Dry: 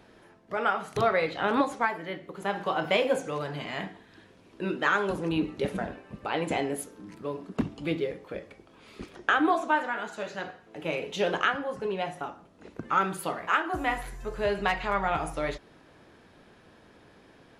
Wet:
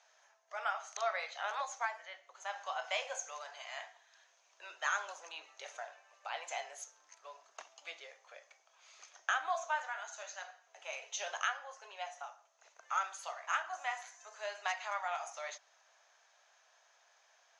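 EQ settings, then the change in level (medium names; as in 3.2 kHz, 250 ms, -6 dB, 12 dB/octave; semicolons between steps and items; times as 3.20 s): elliptic high-pass 650 Hz, stop band 80 dB; four-pole ladder low-pass 6.6 kHz, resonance 85%; +3.5 dB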